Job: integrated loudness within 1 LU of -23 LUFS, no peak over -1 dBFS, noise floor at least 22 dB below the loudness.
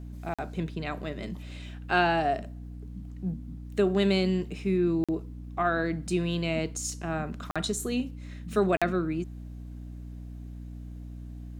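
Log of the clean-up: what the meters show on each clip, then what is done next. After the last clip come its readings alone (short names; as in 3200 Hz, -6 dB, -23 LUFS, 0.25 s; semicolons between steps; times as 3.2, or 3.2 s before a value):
dropouts 4; longest dropout 46 ms; hum 60 Hz; harmonics up to 300 Hz; hum level -39 dBFS; loudness -29.5 LUFS; peak -9.0 dBFS; loudness target -23.0 LUFS
-> interpolate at 0.34/5.04/7.51/8.77, 46 ms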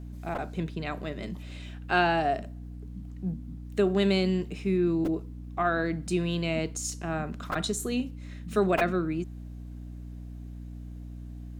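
dropouts 0; hum 60 Hz; harmonics up to 300 Hz; hum level -39 dBFS
-> de-hum 60 Hz, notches 5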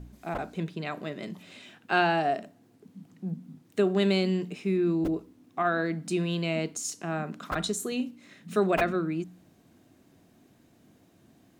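hum none; loudness -29.5 LUFS; peak -9.5 dBFS; loudness target -23.0 LUFS
-> gain +6.5 dB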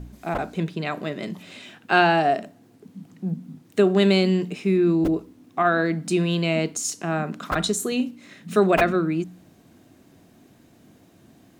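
loudness -23.0 LUFS; peak -3.0 dBFS; noise floor -55 dBFS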